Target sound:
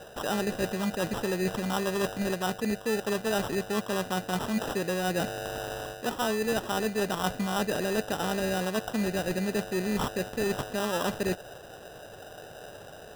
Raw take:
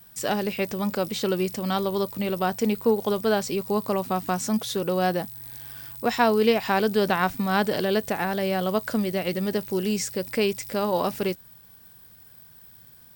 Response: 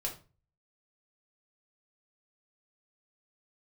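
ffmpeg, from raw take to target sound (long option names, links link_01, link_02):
-af "areverse,acompressor=threshold=-31dB:ratio=6,areverse,acrusher=samples=20:mix=1:aa=0.000001,volume=4.5dB"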